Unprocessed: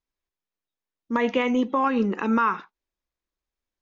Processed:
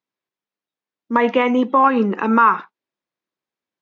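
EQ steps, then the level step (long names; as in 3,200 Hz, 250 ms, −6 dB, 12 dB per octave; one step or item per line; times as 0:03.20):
high-pass filter 130 Hz 24 dB per octave
high-frequency loss of the air 110 metres
dynamic equaliser 980 Hz, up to +6 dB, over −33 dBFS, Q 0.76
+4.5 dB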